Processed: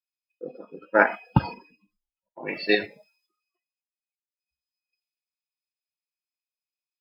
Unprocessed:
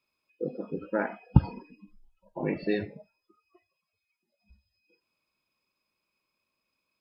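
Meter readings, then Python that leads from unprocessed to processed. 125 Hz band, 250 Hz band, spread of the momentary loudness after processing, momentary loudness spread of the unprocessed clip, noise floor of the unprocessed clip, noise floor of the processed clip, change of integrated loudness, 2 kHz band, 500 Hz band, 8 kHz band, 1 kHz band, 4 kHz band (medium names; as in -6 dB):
-2.5 dB, +0.5 dB, 20 LU, 17 LU, -84 dBFS, under -85 dBFS, +6.5 dB, +14.0 dB, +6.0 dB, no reading, +11.0 dB, +16.0 dB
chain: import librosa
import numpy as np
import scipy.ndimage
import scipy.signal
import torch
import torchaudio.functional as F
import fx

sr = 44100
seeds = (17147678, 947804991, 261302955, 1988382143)

p1 = fx.highpass(x, sr, hz=970.0, slope=6)
p2 = fx.level_steps(p1, sr, step_db=17)
p3 = p1 + F.gain(torch.from_numpy(p2), 0.0).numpy()
p4 = fx.band_widen(p3, sr, depth_pct=100)
y = F.gain(torch.from_numpy(p4), 3.5).numpy()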